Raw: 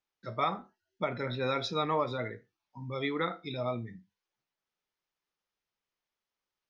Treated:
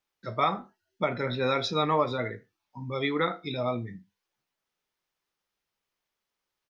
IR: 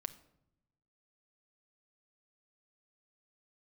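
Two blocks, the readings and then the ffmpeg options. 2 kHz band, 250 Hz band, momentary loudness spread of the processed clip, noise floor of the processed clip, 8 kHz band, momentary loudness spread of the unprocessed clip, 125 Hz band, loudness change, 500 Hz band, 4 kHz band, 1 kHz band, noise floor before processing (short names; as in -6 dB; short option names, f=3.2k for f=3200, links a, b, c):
+4.5 dB, +4.5 dB, 12 LU, under -85 dBFS, n/a, 12 LU, +4.0 dB, +4.5 dB, +4.5 dB, +5.0 dB, +4.5 dB, under -85 dBFS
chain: -filter_complex "[0:a]asplit=2[a][b];[b]adelay=20,volume=-14dB[c];[a][c]amix=inputs=2:normalize=0,volume=4.5dB"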